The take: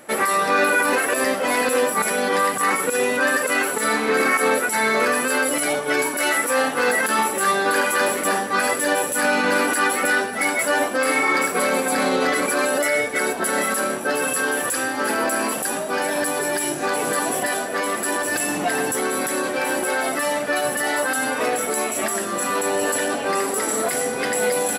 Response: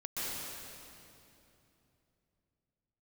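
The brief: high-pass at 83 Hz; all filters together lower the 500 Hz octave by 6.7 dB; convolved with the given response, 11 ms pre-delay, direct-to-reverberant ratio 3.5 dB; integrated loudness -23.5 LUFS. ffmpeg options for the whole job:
-filter_complex "[0:a]highpass=83,equalizer=f=500:t=o:g=-8,asplit=2[a][b];[1:a]atrim=start_sample=2205,adelay=11[c];[b][c]afir=irnorm=-1:irlink=0,volume=-8dB[d];[a][d]amix=inputs=2:normalize=0,volume=-3dB"

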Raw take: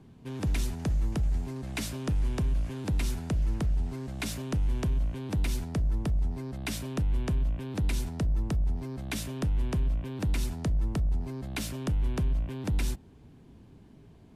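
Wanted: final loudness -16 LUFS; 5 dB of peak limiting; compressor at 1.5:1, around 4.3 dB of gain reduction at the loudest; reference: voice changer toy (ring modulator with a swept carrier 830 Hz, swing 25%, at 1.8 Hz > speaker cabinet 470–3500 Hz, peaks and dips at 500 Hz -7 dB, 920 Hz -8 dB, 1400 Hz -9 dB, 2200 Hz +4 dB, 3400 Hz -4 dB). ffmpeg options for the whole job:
-af "acompressor=threshold=-36dB:ratio=1.5,alimiter=level_in=4dB:limit=-24dB:level=0:latency=1,volume=-4dB,aeval=exprs='val(0)*sin(2*PI*830*n/s+830*0.25/1.8*sin(2*PI*1.8*n/s))':c=same,highpass=470,equalizer=f=500:t=q:w=4:g=-7,equalizer=f=920:t=q:w=4:g=-8,equalizer=f=1.4k:t=q:w=4:g=-9,equalizer=f=2.2k:t=q:w=4:g=4,equalizer=f=3.4k:t=q:w=4:g=-4,lowpass=f=3.5k:w=0.5412,lowpass=f=3.5k:w=1.3066,volume=26dB"

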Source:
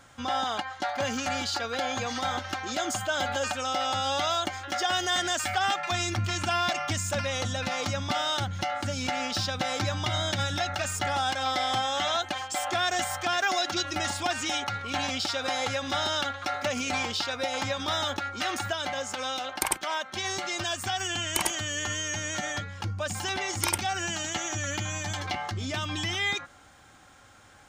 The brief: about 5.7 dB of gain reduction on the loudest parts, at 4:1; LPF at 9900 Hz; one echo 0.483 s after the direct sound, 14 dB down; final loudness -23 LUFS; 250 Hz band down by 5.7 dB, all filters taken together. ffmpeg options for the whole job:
-af "lowpass=9.9k,equalizer=f=250:t=o:g=-7.5,acompressor=threshold=-30dB:ratio=4,aecho=1:1:483:0.2,volume=9.5dB"

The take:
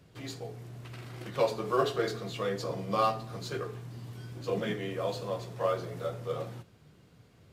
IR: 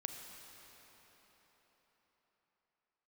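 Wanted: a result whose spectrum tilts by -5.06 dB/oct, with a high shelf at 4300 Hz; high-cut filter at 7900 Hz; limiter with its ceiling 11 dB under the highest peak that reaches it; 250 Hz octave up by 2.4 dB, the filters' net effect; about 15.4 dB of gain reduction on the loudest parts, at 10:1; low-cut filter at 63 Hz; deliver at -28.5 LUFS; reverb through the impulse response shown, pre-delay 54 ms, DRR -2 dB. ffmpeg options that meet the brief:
-filter_complex "[0:a]highpass=63,lowpass=7.9k,equalizer=f=250:t=o:g=3.5,highshelf=f=4.3k:g=5.5,acompressor=threshold=-37dB:ratio=10,alimiter=level_in=14dB:limit=-24dB:level=0:latency=1,volume=-14dB,asplit=2[a][b];[1:a]atrim=start_sample=2205,adelay=54[c];[b][c]afir=irnorm=-1:irlink=0,volume=3.5dB[d];[a][d]amix=inputs=2:normalize=0,volume=15dB"

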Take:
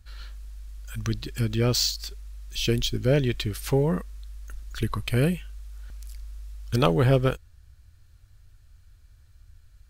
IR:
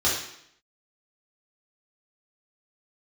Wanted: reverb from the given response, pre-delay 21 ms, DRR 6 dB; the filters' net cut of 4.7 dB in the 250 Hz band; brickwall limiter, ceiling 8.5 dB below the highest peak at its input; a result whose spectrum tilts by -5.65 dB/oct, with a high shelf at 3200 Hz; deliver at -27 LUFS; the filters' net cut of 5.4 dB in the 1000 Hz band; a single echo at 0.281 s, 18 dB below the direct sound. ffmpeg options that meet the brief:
-filter_complex "[0:a]equalizer=f=250:t=o:g=-7,equalizer=f=1k:t=o:g=-6,highshelf=f=3.2k:g=-8,alimiter=limit=-19dB:level=0:latency=1,aecho=1:1:281:0.126,asplit=2[a][b];[1:a]atrim=start_sample=2205,adelay=21[c];[b][c]afir=irnorm=-1:irlink=0,volume=-19.5dB[d];[a][d]amix=inputs=2:normalize=0,volume=3.5dB"

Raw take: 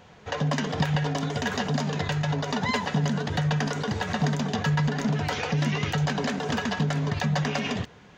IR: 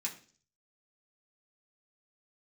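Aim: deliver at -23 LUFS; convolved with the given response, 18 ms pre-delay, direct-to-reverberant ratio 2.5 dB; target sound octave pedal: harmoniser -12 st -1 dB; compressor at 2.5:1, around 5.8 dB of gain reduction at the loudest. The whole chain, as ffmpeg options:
-filter_complex "[0:a]acompressor=threshold=-29dB:ratio=2.5,asplit=2[a][b];[1:a]atrim=start_sample=2205,adelay=18[c];[b][c]afir=irnorm=-1:irlink=0,volume=-3dB[d];[a][d]amix=inputs=2:normalize=0,asplit=2[e][f];[f]asetrate=22050,aresample=44100,atempo=2,volume=-1dB[g];[e][g]amix=inputs=2:normalize=0,volume=4.5dB"

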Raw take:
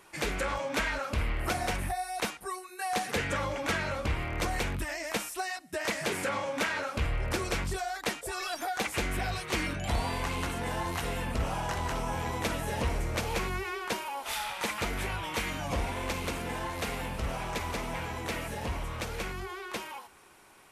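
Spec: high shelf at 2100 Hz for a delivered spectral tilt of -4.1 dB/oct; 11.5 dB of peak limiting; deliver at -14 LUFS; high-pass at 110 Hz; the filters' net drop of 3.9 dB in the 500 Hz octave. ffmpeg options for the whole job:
-af "highpass=110,equalizer=f=500:t=o:g=-4.5,highshelf=f=2.1k:g=-5,volume=26.5dB,alimiter=limit=-5.5dB:level=0:latency=1"

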